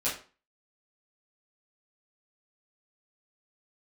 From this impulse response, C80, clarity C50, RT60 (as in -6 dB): 12.0 dB, 7.0 dB, 0.35 s